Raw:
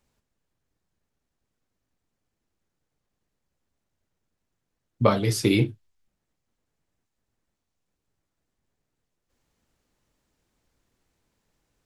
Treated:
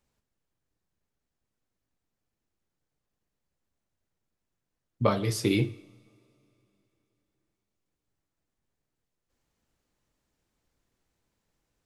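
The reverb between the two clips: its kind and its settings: two-slope reverb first 0.81 s, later 3.5 s, from -20 dB, DRR 15.5 dB; gain -4.5 dB

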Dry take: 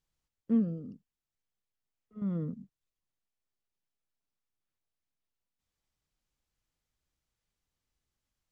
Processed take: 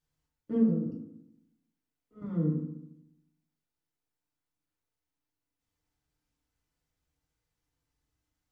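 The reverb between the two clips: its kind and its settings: FDN reverb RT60 0.81 s, low-frequency decay 1.25×, high-frequency decay 0.4×, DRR -5 dB; gain -4 dB

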